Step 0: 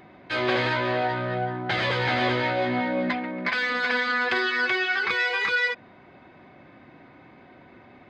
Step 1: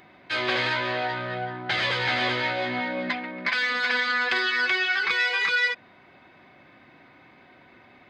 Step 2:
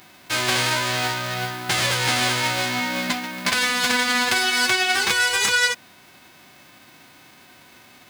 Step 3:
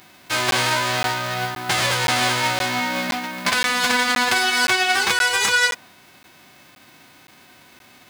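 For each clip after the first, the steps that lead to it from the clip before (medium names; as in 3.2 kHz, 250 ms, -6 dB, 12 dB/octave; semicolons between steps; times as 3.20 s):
tilt shelf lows -5 dB, about 1.2 kHz; trim -1 dB
formants flattened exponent 0.3; trim +4 dB
dynamic bell 880 Hz, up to +4 dB, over -38 dBFS, Q 0.87; crackling interface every 0.52 s, samples 512, zero, from 0.51 s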